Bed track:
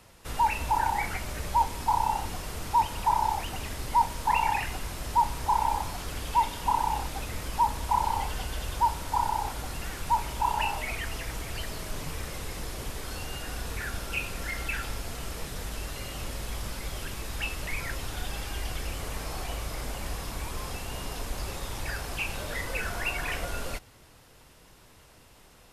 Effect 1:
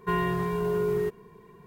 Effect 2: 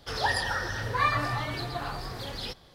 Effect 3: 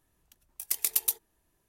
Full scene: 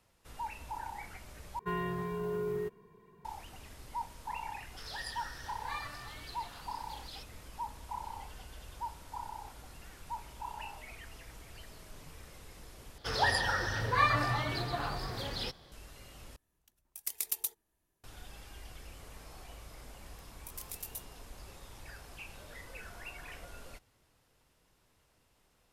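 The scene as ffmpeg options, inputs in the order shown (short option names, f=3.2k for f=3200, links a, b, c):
-filter_complex "[2:a]asplit=2[a][b];[3:a]asplit=2[c][d];[0:a]volume=-15.5dB[e];[a]tiltshelf=f=1.3k:g=-7[f];[d]alimiter=limit=-24dB:level=0:latency=1:release=41[g];[e]asplit=4[h][i][j][k];[h]atrim=end=1.594[l];[1:a]atrim=end=1.66,asetpts=PTS-STARTPTS,volume=-8.5dB[m];[i]atrim=start=3.246:end=12.984[n];[b]atrim=end=2.74,asetpts=PTS-STARTPTS,volume=-1.5dB[o];[j]atrim=start=15.716:end=16.364[p];[c]atrim=end=1.68,asetpts=PTS-STARTPTS,volume=-7.5dB[q];[k]atrim=start=18.036[r];[f]atrim=end=2.74,asetpts=PTS-STARTPTS,volume=-16.5dB,afade=t=in:d=0.004:c=hsin,afade=t=out:st=2.736:d=0.004:c=hsin,adelay=4700[s];[g]atrim=end=1.68,asetpts=PTS-STARTPTS,volume=-6.5dB,afade=t=in:d=0.004:c=hsin,afade=t=out:st=1.676:d=0.004:c=hsin,adelay=19870[t];[l][m]acrossfade=d=0.004:c1=hsin:c2=hsin[u];[u][n]acrossfade=d=0.004:c1=hsin:c2=hsin[v];[v][o]acrossfade=d=0.004:c1=hsin:c2=hsin[w];[w][p]acrossfade=d=0.004:c1=hsin:c2=hsin[x];[x][q]acrossfade=d=0.004:c1=hsin:c2=hsin[y];[y][r]acrossfade=d=0.004:c1=hsin:c2=hsin[z];[z][s][t]amix=inputs=3:normalize=0"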